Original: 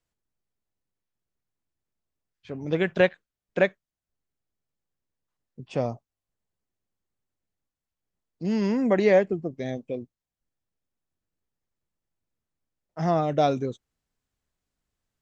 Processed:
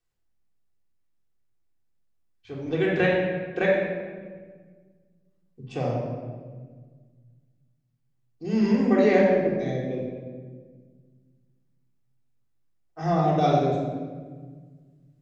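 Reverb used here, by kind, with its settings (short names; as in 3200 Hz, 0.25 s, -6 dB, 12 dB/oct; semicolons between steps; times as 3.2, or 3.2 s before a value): shoebox room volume 1700 m³, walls mixed, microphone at 3.6 m; gain -5 dB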